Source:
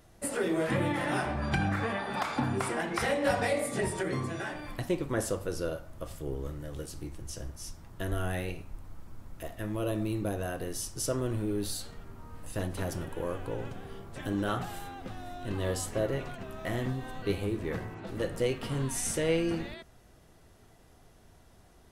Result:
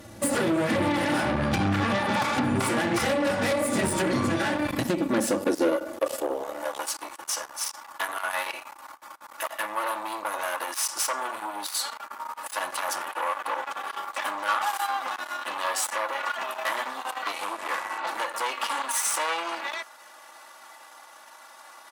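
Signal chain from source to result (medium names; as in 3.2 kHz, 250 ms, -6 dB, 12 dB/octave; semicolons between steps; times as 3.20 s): 17.33–17.98 s: CVSD coder 64 kbps; comb 3.5 ms, depth 90%; compression 5:1, threshold -33 dBFS, peak gain reduction 13.5 dB; Chebyshev shaper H 2 -18 dB, 3 -24 dB, 5 -11 dB, 8 -13 dB, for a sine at -22 dBFS; high-pass sweep 120 Hz -> 1 kHz, 4.65–6.95 s; trim +5 dB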